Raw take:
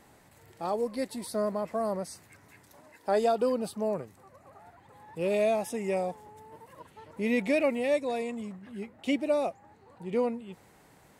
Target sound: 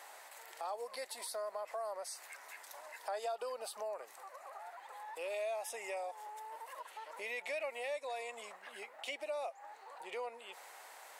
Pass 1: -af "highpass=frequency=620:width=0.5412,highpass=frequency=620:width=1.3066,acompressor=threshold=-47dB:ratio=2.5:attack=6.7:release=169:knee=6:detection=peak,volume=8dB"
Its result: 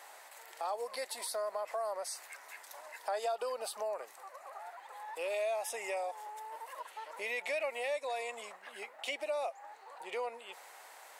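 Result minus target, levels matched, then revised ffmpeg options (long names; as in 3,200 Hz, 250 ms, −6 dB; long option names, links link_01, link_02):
downward compressor: peak gain reduction −4 dB
-af "highpass=frequency=620:width=0.5412,highpass=frequency=620:width=1.3066,acompressor=threshold=-54dB:ratio=2.5:attack=6.7:release=169:knee=6:detection=peak,volume=8dB"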